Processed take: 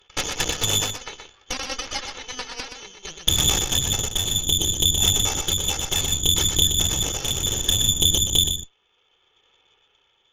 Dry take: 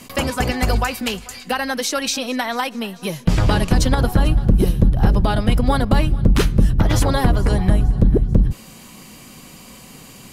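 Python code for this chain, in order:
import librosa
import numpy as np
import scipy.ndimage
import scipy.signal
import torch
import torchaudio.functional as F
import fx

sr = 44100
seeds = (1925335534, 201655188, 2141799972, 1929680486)

p1 = fx.lower_of_two(x, sr, delay_ms=2.3)
p2 = fx.rider(p1, sr, range_db=3, speed_s=0.5)
p3 = fx.freq_invert(p2, sr, carrier_hz=3500)
p4 = fx.cheby_harmonics(p3, sr, harmonics=(3, 4, 8), levels_db=(-11, -16, -24), full_scale_db=-2.0)
p5 = p4 + fx.echo_single(p4, sr, ms=123, db=-6.5, dry=0)
p6 = fx.tremolo_shape(p5, sr, shape='triangle', hz=0.65, depth_pct=45)
y = p6 * 10.0 ** (-1.0 / 20.0)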